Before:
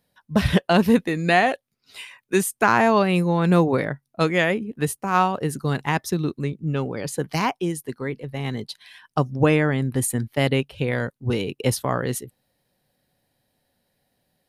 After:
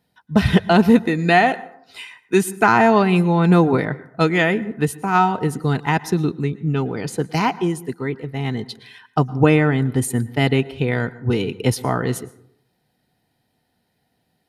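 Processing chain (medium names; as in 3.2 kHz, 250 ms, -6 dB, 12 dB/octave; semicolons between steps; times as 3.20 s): treble shelf 6.7 kHz -7.5 dB; comb of notches 560 Hz; plate-style reverb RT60 0.66 s, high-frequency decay 0.45×, pre-delay 100 ms, DRR 18.5 dB; trim +4.5 dB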